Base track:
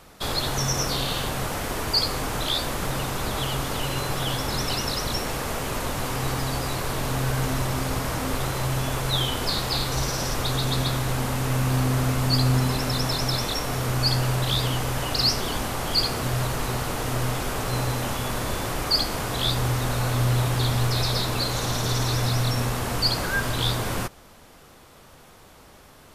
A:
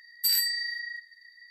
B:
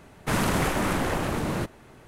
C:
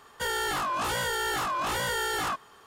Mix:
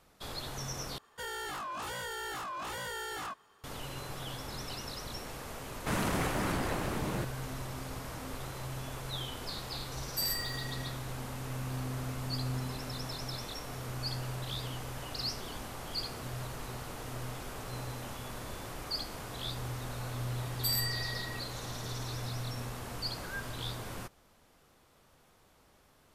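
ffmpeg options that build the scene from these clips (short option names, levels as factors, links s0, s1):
-filter_complex "[1:a]asplit=2[s0][s1];[0:a]volume=0.188[s2];[s0]aeval=exprs='sgn(val(0))*max(abs(val(0))-0.00794,0)':c=same[s3];[s2]asplit=2[s4][s5];[s4]atrim=end=0.984[s6];[3:a]atrim=end=2.66,asetpts=PTS-STARTPTS,volume=0.316[s7];[s5]atrim=start=3.636[s8];[2:a]atrim=end=2.07,asetpts=PTS-STARTPTS,volume=0.422,afade=t=in:d=0.004:c=hsin,afade=t=out:st=2.066:d=0.004:c=hsin,adelay=5590[s9];[s3]atrim=end=1.5,asetpts=PTS-STARTPTS,volume=0.398,afade=t=in:d=0.004:c=hsin,afade=t=out:st=1.496:d=0.004:c=hsin,adelay=9930[s10];[s1]atrim=end=1.5,asetpts=PTS-STARTPTS,volume=0.422,afade=t=in:d=0.004:c=hsin,afade=t=out:st=1.496:d=0.004:c=hsin,adelay=20400[s11];[s6][s7]acrossfade=d=0.004:c1=hsin:c2=hsin[s12];[s12][s8]acrossfade=d=0.004:c1=hsin:c2=hsin[s13];[s13][s9][s10][s11]amix=inputs=4:normalize=0"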